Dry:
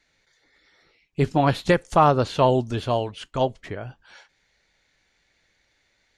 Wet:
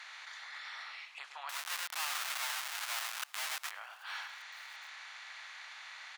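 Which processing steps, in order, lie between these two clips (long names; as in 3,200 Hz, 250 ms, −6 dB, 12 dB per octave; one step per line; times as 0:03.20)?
compressor on every frequency bin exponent 0.6
low-pass filter 3,700 Hz 6 dB per octave
single-tap delay 105 ms −10.5 dB
0:01.49–0:03.71: comparator with hysteresis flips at −28.5 dBFS
downward compressor 3 to 1, threshold −38 dBFS, peak gain reduction 19 dB
Bessel high-pass filter 1,600 Hz, order 6
single-tap delay 1,183 ms −23.5 dB
level +4 dB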